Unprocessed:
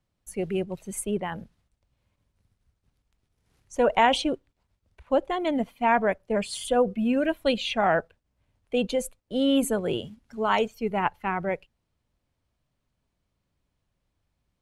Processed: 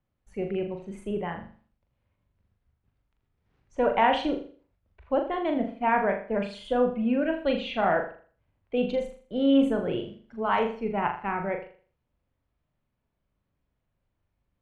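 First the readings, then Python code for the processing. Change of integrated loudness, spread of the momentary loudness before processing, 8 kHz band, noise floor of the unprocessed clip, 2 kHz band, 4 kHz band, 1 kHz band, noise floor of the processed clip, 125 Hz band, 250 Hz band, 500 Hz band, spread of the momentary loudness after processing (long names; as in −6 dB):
−1.0 dB, 10 LU, below −20 dB, −79 dBFS, −2.0 dB, −6.0 dB, −1.0 dB, −79 dBFS, −2.0 dB, 0.0 dB, −1.0 dB, 12 LU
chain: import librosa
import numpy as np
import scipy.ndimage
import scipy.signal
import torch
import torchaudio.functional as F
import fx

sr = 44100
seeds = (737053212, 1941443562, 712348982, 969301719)

y = scipy.signal.sosfilt(scipy.signal.butter(2, 2600.0, 'lowpass', fs=sr, output='sos'), x)
y = fx.room_flutter(y, sr, wall_m=6.9, rt60_s=0.44)
y = y * librosa.db_to_amplitude(-2.5)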